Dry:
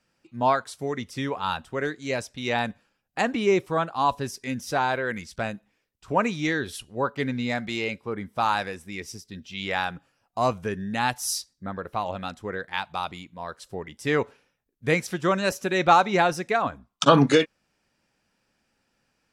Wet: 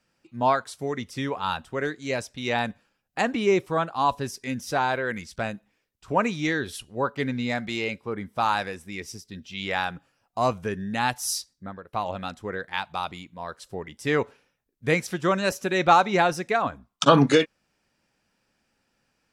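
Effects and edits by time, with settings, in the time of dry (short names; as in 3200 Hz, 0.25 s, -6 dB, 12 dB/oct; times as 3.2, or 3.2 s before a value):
11.52–11.93 fade out, to -19.5 dB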